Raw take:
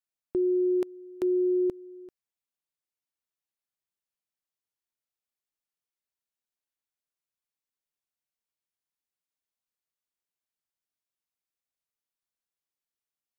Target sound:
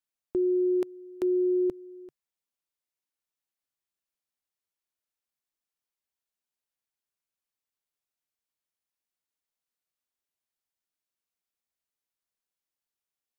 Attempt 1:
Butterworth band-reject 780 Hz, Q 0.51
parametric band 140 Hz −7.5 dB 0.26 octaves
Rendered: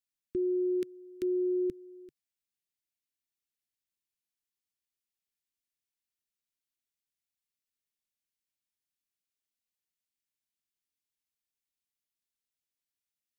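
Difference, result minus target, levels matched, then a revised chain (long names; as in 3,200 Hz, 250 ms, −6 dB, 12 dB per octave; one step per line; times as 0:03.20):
1,000 Hz band −14.5 dB
parametric band 140 Hz −7.5 dB 0.26 octaves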